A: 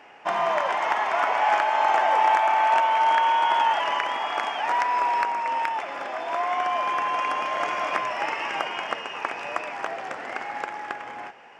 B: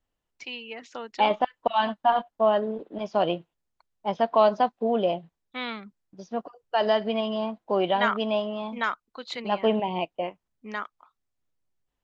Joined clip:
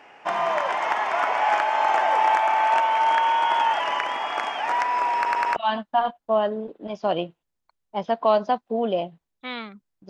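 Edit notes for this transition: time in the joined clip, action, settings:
A
5.16 stutter in place 0.10 s, 4 plays
5.56 switch to B from 1.67 s

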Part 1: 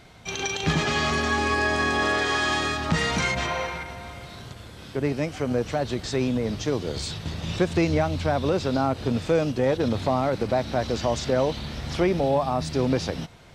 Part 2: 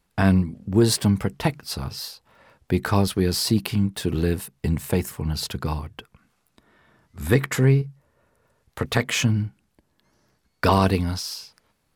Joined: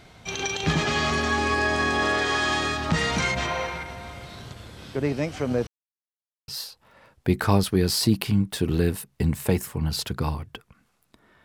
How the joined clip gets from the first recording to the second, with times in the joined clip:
part 1
5.67–6.48 mute
6.48 switch to part 2 from 1.92 s

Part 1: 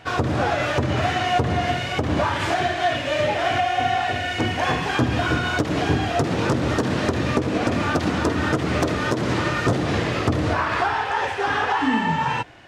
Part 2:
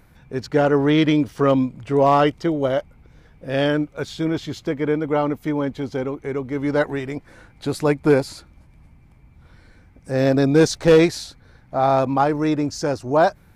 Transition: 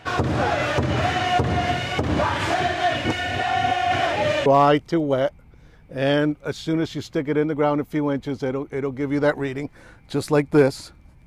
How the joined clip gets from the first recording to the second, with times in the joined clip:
part 1
3.05–4.46 reverse
4.46 switch to part 2 from 1.98 s

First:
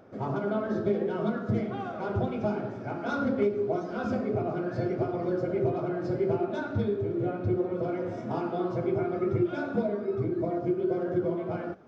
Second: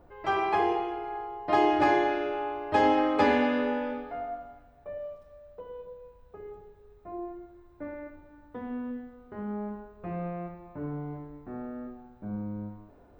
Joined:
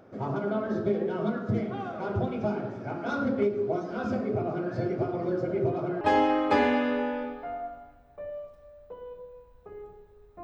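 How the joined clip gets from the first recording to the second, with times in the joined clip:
first
6.01 switch to second from 2.69 s

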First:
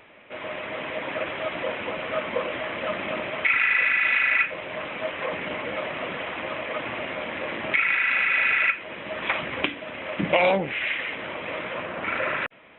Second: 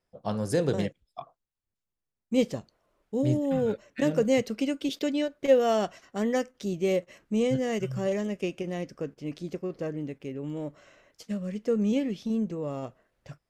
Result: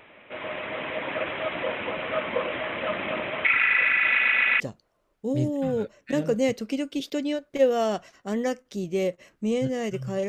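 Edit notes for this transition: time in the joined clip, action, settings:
first
4.08 stutter in place 0.13 s, 4 plays
4.6 switch to second from 2.49 s

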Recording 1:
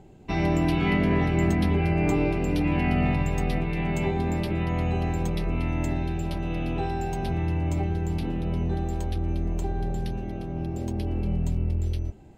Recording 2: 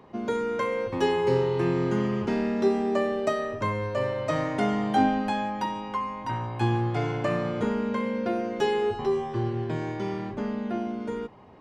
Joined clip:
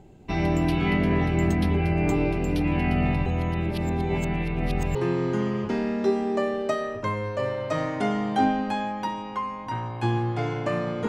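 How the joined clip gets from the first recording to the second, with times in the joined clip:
recording 1
3.26–4.95 reverse
4.95 switch to recording 2 from 1.53 s

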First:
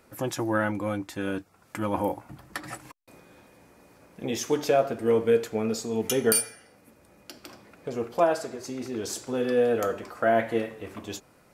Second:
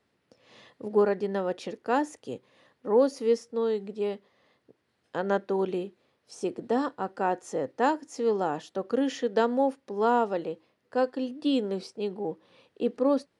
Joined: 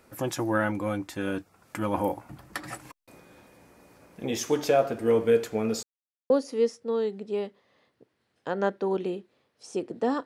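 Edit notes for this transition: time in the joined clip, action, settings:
first
5.83–6.3 mute
6.3 switch to second from 2.98 s

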